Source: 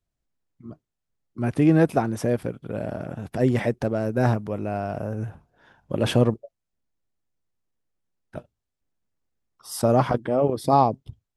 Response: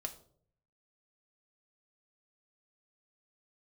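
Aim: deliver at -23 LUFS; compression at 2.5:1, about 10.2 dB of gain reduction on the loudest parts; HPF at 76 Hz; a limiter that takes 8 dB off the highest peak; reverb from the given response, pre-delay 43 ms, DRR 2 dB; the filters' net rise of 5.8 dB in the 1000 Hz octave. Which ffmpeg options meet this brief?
-filter_complex "[0:a]highpass=76,equalizer=f=1k:t=o:g=8,acompressor=threshold=-23dB:ratio=2.5,alimiter=limit=-17dB:level=0:latency=1,asplit=2[a][b];[1:a]atrim=start_sample=2205,adelay=43[c];[b][c]afir=irnorm=-1:irlink=0,volume=-0.5dB[d];[a][d]amix=inputs=2:normalize=0,volume=4.5dB"

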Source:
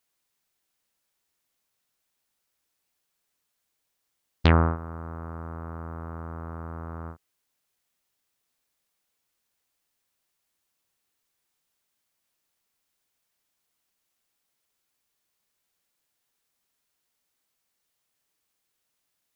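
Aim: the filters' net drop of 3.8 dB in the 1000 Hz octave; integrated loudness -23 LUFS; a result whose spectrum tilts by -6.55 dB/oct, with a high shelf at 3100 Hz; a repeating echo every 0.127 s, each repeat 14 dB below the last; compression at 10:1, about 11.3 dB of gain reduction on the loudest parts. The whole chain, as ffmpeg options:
-af "equalizer=f=1k:t=o:g=-4.5,highshelf=f=3.1k:g=-3.5,acompressor=threshold=-26dB:ratio=10,aecho=1:1:127|254:0.2|0.0399,volume=14.5dB"

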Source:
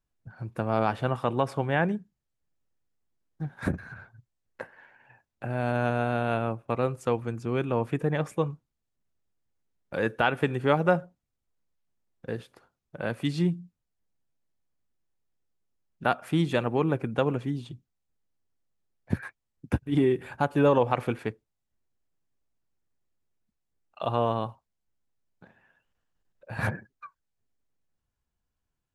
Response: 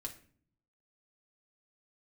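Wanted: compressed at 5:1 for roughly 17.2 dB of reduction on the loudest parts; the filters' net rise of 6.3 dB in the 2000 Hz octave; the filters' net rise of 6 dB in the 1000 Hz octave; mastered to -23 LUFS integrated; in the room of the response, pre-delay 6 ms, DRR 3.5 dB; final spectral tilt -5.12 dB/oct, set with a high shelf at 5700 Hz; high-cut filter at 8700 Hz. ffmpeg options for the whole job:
-filter_complex "[0:a]lowpass=8.7k,equalizer=f=1k:t=o:g=6.5,equalizer=f=2k:t=o:g=5,highshelf=f=5.7k:g=8,acompressor=threshold=-34dB:ratio=5,asplit=2[a][b];[1:a]atrim=start_sample=2205,adelay=6[c];[b][c]afir=irnorm=-1:irlink=0,volume=-1dB[d];[a][d]amix=inputs=2:normalize=0,volume=14.5dB"

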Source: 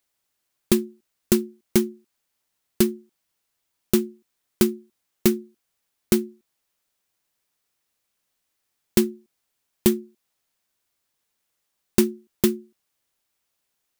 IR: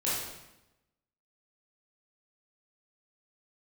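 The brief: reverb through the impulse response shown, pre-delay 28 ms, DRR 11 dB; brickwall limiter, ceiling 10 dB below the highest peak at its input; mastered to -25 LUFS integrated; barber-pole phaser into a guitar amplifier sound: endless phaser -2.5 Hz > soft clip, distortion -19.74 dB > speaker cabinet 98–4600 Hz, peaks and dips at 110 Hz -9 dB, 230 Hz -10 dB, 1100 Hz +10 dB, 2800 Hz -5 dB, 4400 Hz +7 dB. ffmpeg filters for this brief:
-filter_complex "[0:a]alimiter=limit=-13.5dB:level=0:latency=1,asplit=2[a][b];[1:a]atrim=start_sample=2205,adelay=28[c];[b][c]afir=irnorm=-1:irlink=0,volume=-19dB[d];[a][d]amix=inputs=2:normalize=0,asplit=2[e][f];[f]afreqshift=-2.5[g];[e][g]amix=inputs=2:normalize=1,asoftclip=threshold=-18.5dB,highpass=98,equalizer=f=110:t=q:w=4:g=-9,equalizer=f=230:t=q:w=4:g=-10,equalizer=f=1.1k:t=q:w=4:g=10,equalizer=f=2.8k:t=q:w=4:g=-5,equalizer=f=4.4k:t=q:w=4:g=7,lowpass=f=4.6k:w=0.5412,lowpass=f=4.6k:w=1.3066,volume=12dB"

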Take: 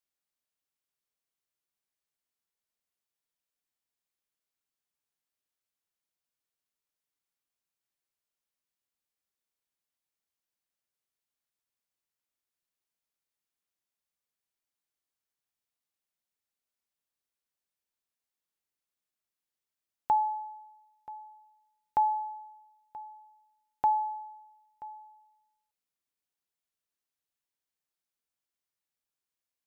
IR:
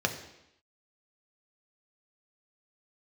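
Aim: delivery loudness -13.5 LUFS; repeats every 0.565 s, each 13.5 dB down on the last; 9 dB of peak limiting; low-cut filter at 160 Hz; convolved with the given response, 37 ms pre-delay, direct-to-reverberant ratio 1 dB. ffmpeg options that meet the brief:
-filter_complex "[0:a]highpass=160,alimiter=level_in=2dB:limit=-24dB:level=0:latency=1,volume=-2dB,aecho=1:1:565|1130:0.211|0.0444,asplit=2[a][b];[1:a]atrim=start_sample=2205,adelay=37[c];[b][c]afir=irnorm=-1:irlink=0,volume=-10dB[d];[a][d]amix=inputs=2:normalize=0,volume=22dB"

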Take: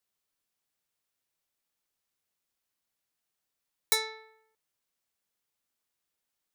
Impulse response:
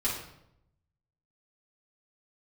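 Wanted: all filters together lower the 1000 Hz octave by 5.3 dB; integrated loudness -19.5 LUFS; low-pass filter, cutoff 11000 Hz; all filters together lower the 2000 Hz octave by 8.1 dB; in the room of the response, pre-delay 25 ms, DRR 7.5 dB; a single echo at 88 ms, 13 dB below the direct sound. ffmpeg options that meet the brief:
-filter_complex "[0:a]lowpass=11k,equalizer=f=1k:t=o:g=-4.5,equalizer=f=2k:t=o:g=-8,aecho=1:1:88:0.224,asplit=2[a][b];[1:a]atrim=start_sample=2205,adelay=25[c];[b][c]afir=irnorm=-1:irlink=0,volume=-14.5dB[d];[a][d]amix=inputs=2:normalize=0,volume=12.5dB"

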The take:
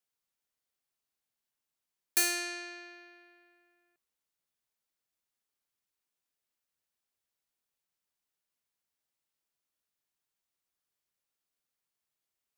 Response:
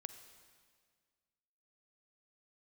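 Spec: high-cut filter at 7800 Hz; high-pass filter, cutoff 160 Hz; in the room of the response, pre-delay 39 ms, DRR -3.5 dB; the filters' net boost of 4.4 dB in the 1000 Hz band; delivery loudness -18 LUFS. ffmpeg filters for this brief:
-filter_complex "[0:a]highpass=160,lowpass=7.8k,equalizer=f=1k:t=o:g=7.5,asplit=2[a][b];[1:a]atrim=start_sample=2205,adelay=39[c];[b][c]afir=irnorm=-1:irlink=0,volume=7.5dB[d];[a][d]amix=inputs=2:normalize=0,volume=10dB"

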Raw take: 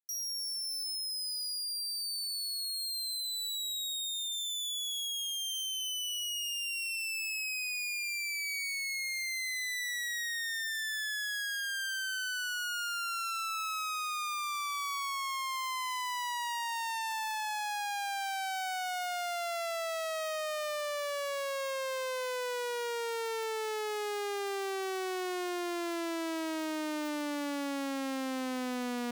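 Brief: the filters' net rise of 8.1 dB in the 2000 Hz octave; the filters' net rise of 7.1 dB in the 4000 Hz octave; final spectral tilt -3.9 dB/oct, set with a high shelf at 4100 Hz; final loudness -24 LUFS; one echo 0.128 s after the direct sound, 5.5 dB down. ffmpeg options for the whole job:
-af "equalizer=f=2k:t=o:g=8.5,equalizer=f=4k:t=o:g=8,highshelf=f=4.1k:g=-3,aecho=1:1:128:0.531,volume=3dB"

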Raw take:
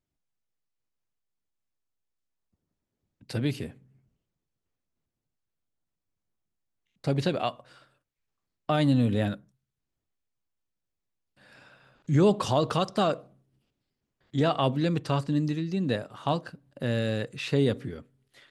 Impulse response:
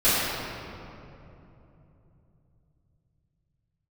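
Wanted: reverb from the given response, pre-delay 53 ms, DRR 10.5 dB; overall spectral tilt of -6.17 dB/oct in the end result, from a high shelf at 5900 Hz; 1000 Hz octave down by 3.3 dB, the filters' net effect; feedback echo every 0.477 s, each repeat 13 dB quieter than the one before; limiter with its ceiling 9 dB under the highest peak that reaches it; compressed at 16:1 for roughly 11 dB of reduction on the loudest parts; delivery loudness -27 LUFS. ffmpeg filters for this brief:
-filter_complex "[0:a]equalizer=f=1k:t=o:g=-4.5,highshelf=f=5.9k:g=-6.5,acompressor=threshold=-28dB:ratio=16,alimiter=level_in=1dB:limit=-24dB:level=0:latency=1,volume=-1dB,aecho=1:1:477|954|1431:0.224|0.0493|0.0108,asplit=2[a][b];[1:a]atrim=start_sample=2205,adelay=53[c];[b][c]afir=irnorm=-1:irlink=0,volume=-29.5dB[d];[a][d]amix=inputs=2:normalize=0,volume=10dB"

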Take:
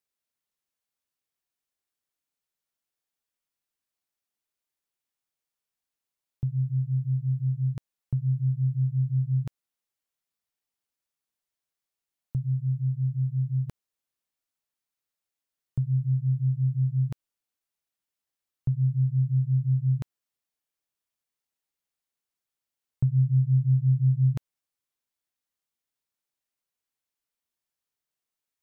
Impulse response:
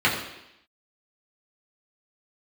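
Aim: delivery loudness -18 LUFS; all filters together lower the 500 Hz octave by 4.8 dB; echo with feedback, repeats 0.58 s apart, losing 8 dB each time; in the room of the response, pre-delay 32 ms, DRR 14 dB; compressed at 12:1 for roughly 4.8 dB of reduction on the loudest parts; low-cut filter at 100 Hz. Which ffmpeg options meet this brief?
-filter_complex "[0:a]highpass=100,equalizer=f=500:t=o:g=-6.5,acompressor=threshold=-24dB:ratio=12,aecho=1:1:580|1160|1740|2320|2900:0.398|0.159|0.0637|0.0255|0.0102,asplit=2[a][b];[1:a]atrim=start_sample=2205,adelay=32[c];[b][c]afir=irnorm=-1:irlink=0,volume=-32dB[d];[a][d]amix=inputs=2:normalize=0,volume=14.5dB"

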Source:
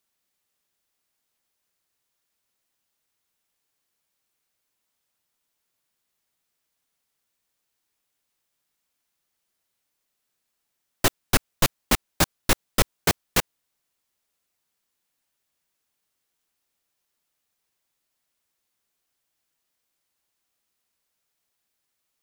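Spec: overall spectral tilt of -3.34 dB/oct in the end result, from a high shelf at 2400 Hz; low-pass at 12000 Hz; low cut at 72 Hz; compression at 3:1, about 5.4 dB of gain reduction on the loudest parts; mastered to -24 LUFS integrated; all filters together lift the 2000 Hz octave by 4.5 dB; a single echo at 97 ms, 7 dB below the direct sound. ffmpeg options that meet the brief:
-af "highpass=72,lowpass=12k,equalizer=f=2k:t=o:g=8.5,highshelf=f=2.4k:g=-6,acompressor=threshold=-23dB:ratio=3,aecho=1:1:97:0.447,volume=5dB"

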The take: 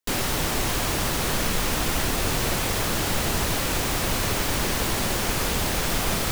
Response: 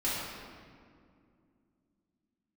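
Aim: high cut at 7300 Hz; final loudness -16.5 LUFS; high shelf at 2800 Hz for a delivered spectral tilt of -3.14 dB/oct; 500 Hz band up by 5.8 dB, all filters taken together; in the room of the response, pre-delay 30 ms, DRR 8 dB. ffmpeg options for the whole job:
-filter_complex "[0:a]lowpass=7.3k,equalizer=f=500:t=o:g=7,highshelf=f=2.8k:g=5,asplit=2[a][b];[1:a]atrim=start_sample=2205,adelay=30[c];[b][c]afir=irnorm=-1:irlink=0,volume=-16dB[d];[a][d]amix=inputs=2:normalize=0,volume=5.5dB"

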